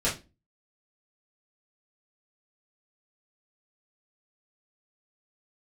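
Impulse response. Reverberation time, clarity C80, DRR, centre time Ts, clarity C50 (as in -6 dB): 0.25 s, 18.0 dB, -8.5 dB, 26 ms, 10.0 dB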